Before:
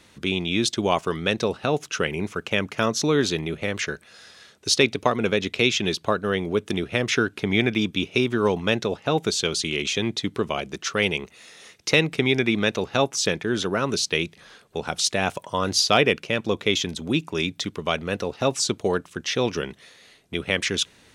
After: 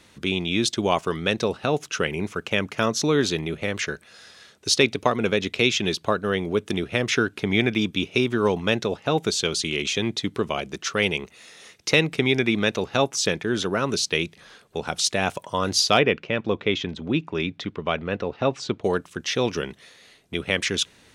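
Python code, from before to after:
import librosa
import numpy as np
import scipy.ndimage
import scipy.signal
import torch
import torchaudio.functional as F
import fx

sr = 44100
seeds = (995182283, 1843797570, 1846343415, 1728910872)

y = fx.lowpass(x, sr, hz=2900.0, slope=12, at=(15.99, 18.84))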